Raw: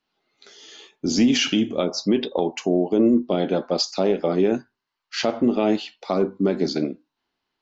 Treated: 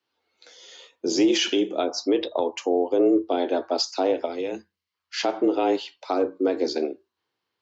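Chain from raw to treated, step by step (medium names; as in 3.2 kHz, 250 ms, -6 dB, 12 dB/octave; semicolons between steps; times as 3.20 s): frequency shift +85 Hz; time-frequency box 4.25–4.94 s, 220–1900 Hz -8 dB; trim -2 dB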